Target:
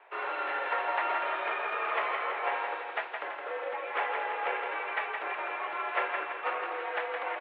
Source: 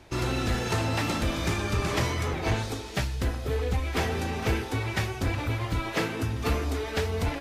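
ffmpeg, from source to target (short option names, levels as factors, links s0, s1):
-filter_complex "[0:a]acrossover=split=550 2400:gain=0.112 1 0.0631[s0][s1][s2];[s0][s1][s2]amix=inputs=3:normalize=0,aecho=1:1:166|332|498|664|830|996|1162:0.562|0.292|0.152|0.0791|0.0411|0.0214|0.0111,highpass=f=320:t=q:w=0.5412,highpass=f=320:t=q:w=1.307,lowpass=f=3400:t=q:w=0.5176,lowpass=f=3400:t=q:w=0.7071,lowpass=f=3400:t=q:w=1.932,afreqshift=53,volume=1.33"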